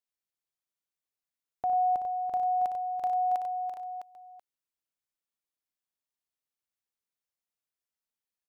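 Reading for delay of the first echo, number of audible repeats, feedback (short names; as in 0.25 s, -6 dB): 59 ms, 4, no steady repeat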